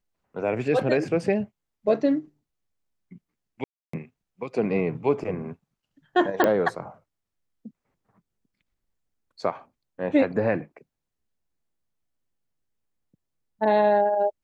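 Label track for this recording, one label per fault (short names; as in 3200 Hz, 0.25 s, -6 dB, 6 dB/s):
3.640000	3.930000	gap 0.294 s
6.440000	6.440000	pop -8 dBFS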